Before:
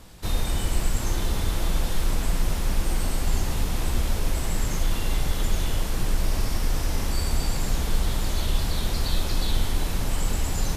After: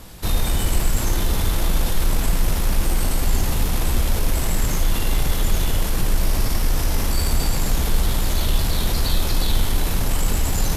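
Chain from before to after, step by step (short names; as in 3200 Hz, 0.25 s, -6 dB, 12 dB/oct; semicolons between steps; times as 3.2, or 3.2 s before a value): in parallel at -6 dB: overloaded stage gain 27 dB; on the sum: bell 12000 Hz +7 dB 0.36 oct; gain +3 dB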